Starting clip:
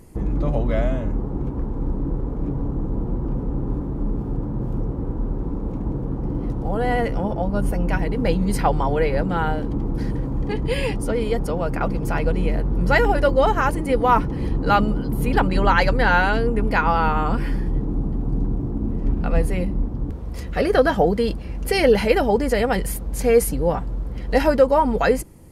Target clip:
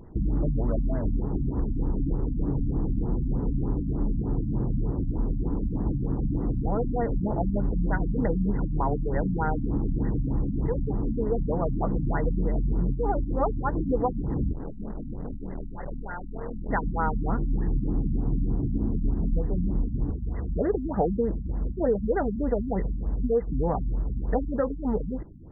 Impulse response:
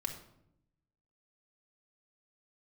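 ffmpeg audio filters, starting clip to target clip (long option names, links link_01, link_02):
-filter_complex "[0:a]bandreject=frequency=530:width=12,acompressor=threshold=-21dB:ratio=4,asplit=3[link_01][link_02][link_03];[link_01]afade=type=out:start_time=14.51:duration=0.02[link_04];[link_02]aeval=exprs='(tanh(39.8*val(0)+0.7)-tanh(0.7))/39.8':channel_layout=same,afade=type=in:start_time=14.51:duration=0.02,afade=type=out:start_time=16.68:duration=0.02[link_05];[link_03]afade=type=in:start_time=16.68:duration=0.02[link_06];[link_04][link_05][link_06]amix=inputs=3:normalize=0,afftfilt=real='re*lt(b*sr/1024,270*pow(2100/270,0.5+0.5*sin(2*PI*3.3*pts/sr)))':imag='im*lt(b*sr/1024,270*pow(2100/270,0.5+0.5*sin(2*PI*3.3*pts/sr)))':win_size=1024:overlap=0.75"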